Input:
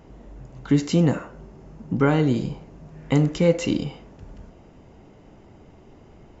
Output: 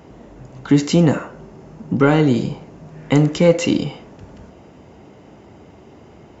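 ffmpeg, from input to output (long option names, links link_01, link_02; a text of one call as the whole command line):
ffmpeg -i in.wav -filter_complex "[0:a]highpass=frequency=65:width=0.5412,highpass=frequency=65:width=1.3066,equalizer=frequency=99:width_type=o:width=1.9:gain=-3.5,asplit=2[link_01][link_02];[link_02]acontrast=89,volume=-0.5dB[link_03];[link_01][link_03]amix=inputs=2:normalize=0,volume=-3dB" out.wav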